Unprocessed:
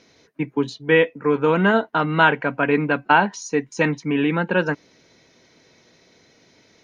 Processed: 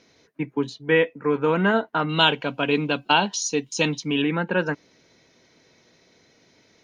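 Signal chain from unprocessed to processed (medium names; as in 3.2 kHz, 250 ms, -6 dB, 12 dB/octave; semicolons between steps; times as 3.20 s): 2.09–4.22 s: resonant high shelf 2.5 kHz +9 dB, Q 3; trim -3 dB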